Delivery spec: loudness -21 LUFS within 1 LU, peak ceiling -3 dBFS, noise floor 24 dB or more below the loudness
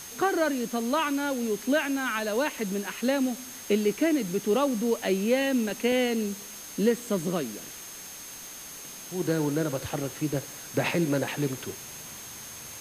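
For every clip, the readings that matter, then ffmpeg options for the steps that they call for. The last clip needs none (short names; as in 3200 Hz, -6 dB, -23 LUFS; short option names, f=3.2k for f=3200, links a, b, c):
steady tone 6400 Hz; tone level -44 dBFS; noise floor -42 dBFS; noise floor target -52 dBFS; loudness -28.0 LUFS; peak -13.0 dBFS; loudness target -21.0 LUFS
-> -af "bandreject=f=6.4k:w=30"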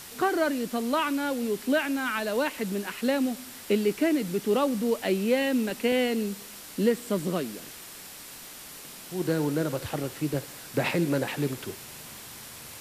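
steady tone none; noise floor -44 dBFS; noise floor target -52 dBFS
-> -af "afftdn=nr=8:nf=-44"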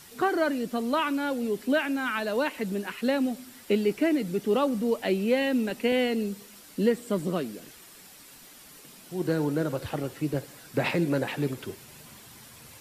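noise floor -50 dBFS; noise floor target -52 dBFS
-> -af "afftdn=nr=6:nf=-50"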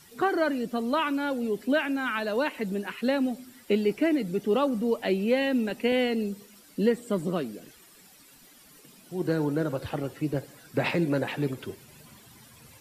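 noise floor -55 dBFS; loudness -28.0 LUFS; peak -13.0 dBFS; loudness target -21.0 LUFS
-> -af "volume=7dB"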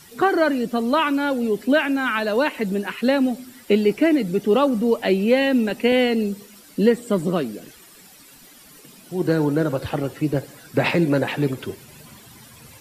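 loudness -21.0 LUFS; peak -6.0 dBFS; noise floor -48 dBFS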